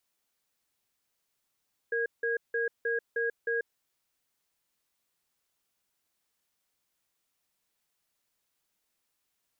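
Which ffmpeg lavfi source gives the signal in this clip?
-f lavfi -i "aevalsrc='0.0335*(sin(2*PI*464*t)+sin(2*PI*1640*t))*clip(min(mod(t,0.31),0.14-mod(t,0.31))/0.005,0,1)':d=1.81:s=44100"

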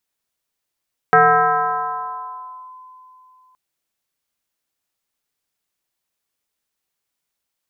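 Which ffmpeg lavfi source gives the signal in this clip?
-f lavfi -i "aevalsrc='0.447*pow(10,-3*t/3.2)*sin(2*PI*1020*t+2.1*clip(1-t/1.61,0,1)*sin(2*PI*0.28*1020*t))':d=2.42:s=44100"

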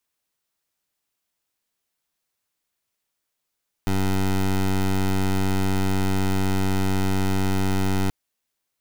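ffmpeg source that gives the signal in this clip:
-f lavfi -i "aevalsrc='0.0891*(2*lt(mod(95.9*t,1),0.17)-1)':d=4.23:s=44100"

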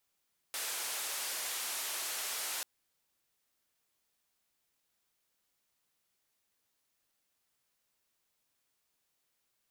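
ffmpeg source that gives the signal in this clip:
-f lavfi -i "anoisesrc=c=white:d=2.09:r=44100:seed=1,highpass=f=540,lowpass=f=13000,volume=-30.7dB"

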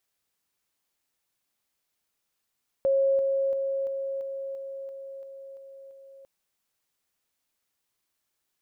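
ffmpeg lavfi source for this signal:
-f lavfi -i "aevalsrc='pow(10,(-19.5-3*floor(t/0.34))/20)*sin(2*PI*544*t)':d=3.4:s=44100"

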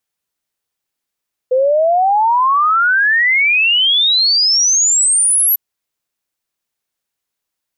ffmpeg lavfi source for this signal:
-f lavfi -i "aevalsrc='0.335*clip(min(t,4.05-t)/0.01,0,1)*sin(2*PI*500*4.05/log(12000/500)*(exp(log(12000/500)*t/4.05)-1))':d=4.05:s=44100"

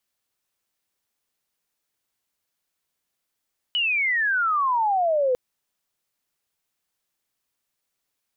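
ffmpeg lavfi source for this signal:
-f lavfi -i "aevalsrc='pow(10,(-20+2*t/1.6)/20)*sin(2*PI*3000*1.6/log(490/3000)*(exp(log(490/3000)*t/1.6)-1))':d=1.6:s=44100"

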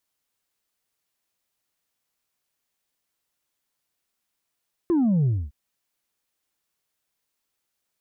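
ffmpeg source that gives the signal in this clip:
-f lavfi -i "aevalsrc='0.126*clip((0.61-t)/0.25,0,1)*tanh(1.26*sin(2*PI*360*0.61/log(65/360)*(exp(log(65/360)*t/0.61)-1)))/tanh(1.26)':d=0.61:s=44100"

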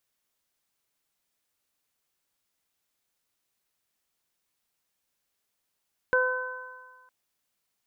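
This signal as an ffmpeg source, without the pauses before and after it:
-f lavfi -i "aevalsrc='0.0794*pow(10,-3*t/1.21)*sin(2*PI*508*t)+0.0398*pow(10,-3*t/1.9)*sin(2*PI*1016*t)+0.0891*pow(10,-3*t/1.49)*sin(2*PI*1524*t)':d=0.96:s=44100"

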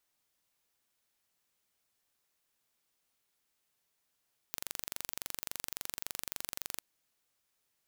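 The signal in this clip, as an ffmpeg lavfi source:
-f lavfi -i "aevalsrc='0.316*eq(mod(n,1869),0)':d=2.27:s=44100"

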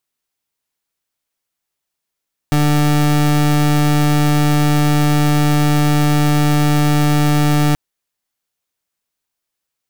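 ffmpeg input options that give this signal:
-f lavfi -i "aevalsrc='0.224*(2*lt(mod(148*t,1),0.29)-1)':d=5.23:s=44100"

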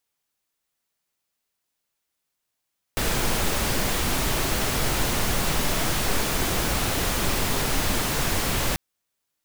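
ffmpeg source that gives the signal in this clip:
-f lavfi -i "anoisesrc=c=pink:a=0.343:d=5.79:r=44100:seed=1"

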